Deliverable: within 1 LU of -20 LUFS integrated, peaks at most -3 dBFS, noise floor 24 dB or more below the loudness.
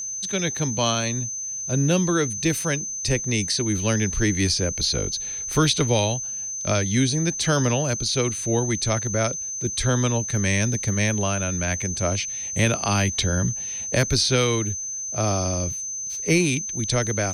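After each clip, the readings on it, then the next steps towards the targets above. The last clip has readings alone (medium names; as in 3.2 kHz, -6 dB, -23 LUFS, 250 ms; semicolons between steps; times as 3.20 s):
tick rate 37 per s; steady tone 6.2 kHz; tone level -28 dBFS; loudness -22.5 LUFS; peak level -8.5 dBFS; loudness target -20.0 LUFS
-> de-click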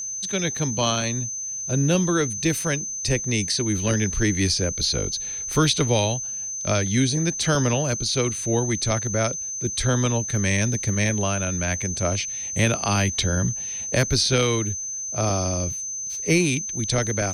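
tick rate 0.40 per s; steady tone 6.2 kHz; tone level -28 dBFS
-> band-stop 6.2 kHz, Q 30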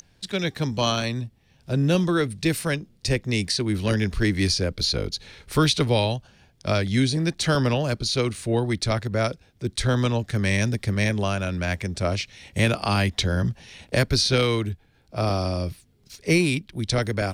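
steady tone not found; loudness -24.0 LUFS; peak level -8.5 dBFS; loudness target -20.0 LUFS
-> trim +4 dB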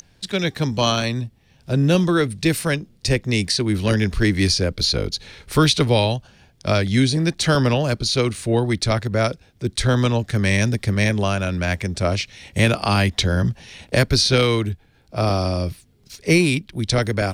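loudness -20.0 LUFS; peak level -4.5 dBFS; noise floor -56 dBFS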